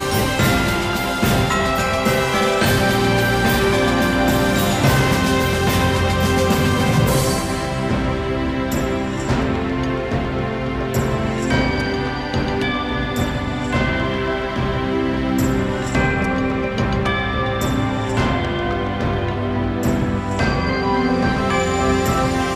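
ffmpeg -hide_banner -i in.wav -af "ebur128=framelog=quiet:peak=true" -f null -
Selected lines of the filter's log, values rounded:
Integrated loudness:
  I:         -18.8 LUFS
  Threshold: -28.8 LUFS
Loudness range:
  LRA:         4.3 LU
  Threshold: -38.9 LUFS
  LRA low:   -20.9 LUFS
  LRA high:  -16.5 LUFS
True peak:
  Peak:       -5.3 dBFS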